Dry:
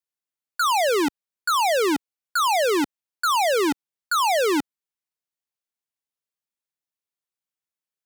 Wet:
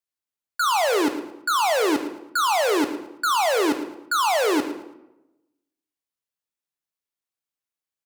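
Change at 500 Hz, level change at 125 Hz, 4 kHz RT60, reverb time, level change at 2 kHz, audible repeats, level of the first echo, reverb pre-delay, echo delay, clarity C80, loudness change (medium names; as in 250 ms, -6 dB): 0.0 dB, no reading, 0.60 s, 0.95 s, 0.0 dB, 2, -14.0 dB, 3 ms, 111 ms, 10.5 dB, 0.0 dB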